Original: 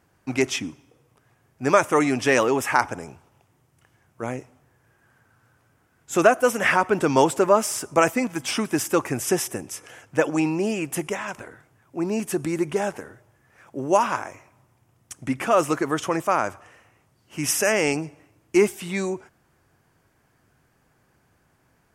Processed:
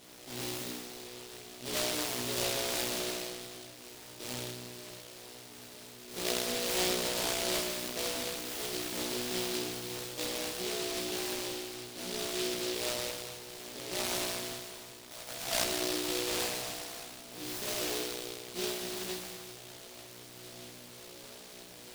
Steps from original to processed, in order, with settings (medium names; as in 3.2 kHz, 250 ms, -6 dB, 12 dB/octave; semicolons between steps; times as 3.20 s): spectral levelling over time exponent 0.4; feedback comb 61 Hz, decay 1.7 s, harmonics all, mix 100%; 15.13–15.64 s: resonant low shelf 500 Hz -9 dB, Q 3; reverberation RT60 2.5 s, pre-delay 56 ms, DRR 10.5 dB; delay time shaken by noise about 3.7 kHz, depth 0.27 ms; trim -5.5 dB